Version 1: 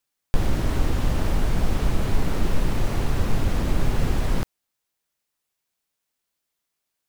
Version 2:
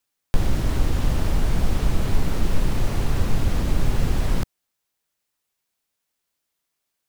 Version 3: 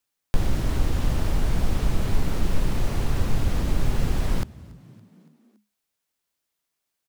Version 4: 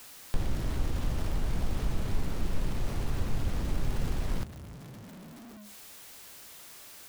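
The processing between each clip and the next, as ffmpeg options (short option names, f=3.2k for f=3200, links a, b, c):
-filter_complex "[0:a]acrossover=split=190|3000[a][b][c];[b]acompressor=threshold=-31dB:ratio=6[d];[a][d][c]amix=inputs=3:normalize=0,volume=1.5dB"
-filter_complex "[0:a]asplit=5[a][b][c][d][e];[b]adelay=282,afreqshift=52,volume=-24dB[f];[c]adelay=564,afreqshift=104,volume=-28.9dB[g];[d]adelay=846,afreqshift=156,volume=-33.8dB[h];[e]adelay=1128,afreqshift=208,volume=-38.6dB[i];[a][f][g][h][i]amix=inputs=5:normalize=0,volume=-2dB"
-af "aeval=exprs='val(0)+0.5*0.0188*sgn(val(0))':c=same,volume=-8dB"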